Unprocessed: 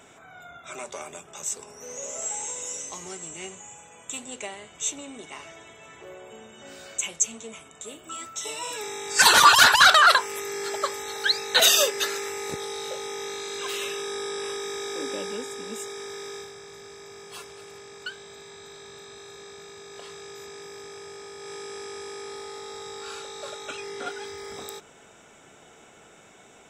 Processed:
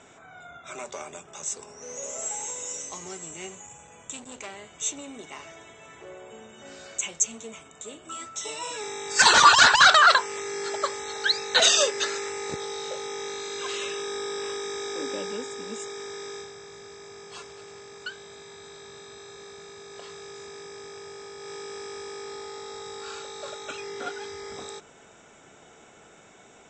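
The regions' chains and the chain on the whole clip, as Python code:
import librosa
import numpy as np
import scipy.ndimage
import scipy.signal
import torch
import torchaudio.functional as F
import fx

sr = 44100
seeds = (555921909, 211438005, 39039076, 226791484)

y = fx.chain(x, sr, fx.low_shelf(hz=120.0, db=10.0),
    fx.transformer_sat(knee_hz=3500.0), at=(3.66, 4.55))
y = scipy.signal.sosfilt(scipy.signal.butter(12, 8000.0, 'lowpass', fs=sr, output='sos'), y)
y = fx.peak_eq(y, sr, hz=2900.0, db=-2.0, octaves=0.77)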